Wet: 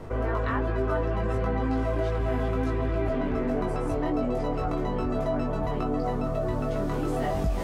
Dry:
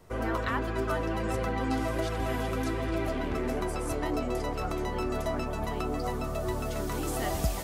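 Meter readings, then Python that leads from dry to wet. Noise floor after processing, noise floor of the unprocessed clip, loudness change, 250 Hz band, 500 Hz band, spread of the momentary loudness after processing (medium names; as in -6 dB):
-29 dBFS, -33 dBFS, +3.5 dB, +4.0 dB, +4.0 dB, 2 LU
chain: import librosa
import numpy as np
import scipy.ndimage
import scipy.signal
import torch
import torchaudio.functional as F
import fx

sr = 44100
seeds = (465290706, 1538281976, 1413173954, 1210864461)

y = fx.lowpass(x, sr, hz=1200.0, slope=6)
y = fx.doubler(y, sr, ms=20.0, db=-2.5)
y = fx.env_flatten(y, sr, amount_pct=50)
y = y * librosa.db_to_amplitude(-1.5)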